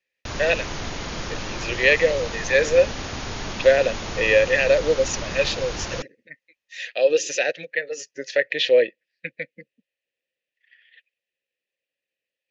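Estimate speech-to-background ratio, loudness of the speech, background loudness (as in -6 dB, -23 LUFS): 10.5 dB, -21.0 LUFS, -31.5 LUFS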